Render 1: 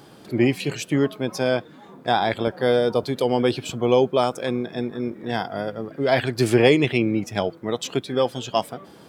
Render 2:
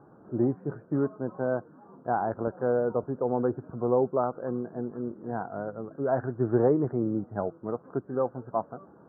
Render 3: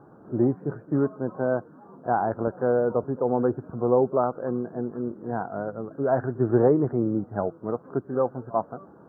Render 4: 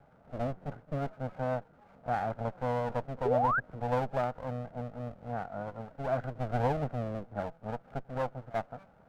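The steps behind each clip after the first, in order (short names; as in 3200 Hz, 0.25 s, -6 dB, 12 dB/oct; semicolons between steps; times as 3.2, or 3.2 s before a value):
steep low-pass 1500 Hz 72 dB/oct; gain -6.5 dB
pre-echo 44 ms -21.5 dB; gain +3.5 dB
minimum comb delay 1.4 ms; painted sound rise, 3.25–3.6, 370–1700 Hz -20 dBFS; gain -8 dB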